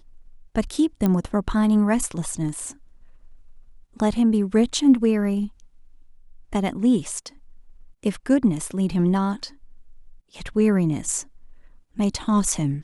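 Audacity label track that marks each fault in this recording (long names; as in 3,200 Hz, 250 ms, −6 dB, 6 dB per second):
1.060000	1.060000	click −10 dBFS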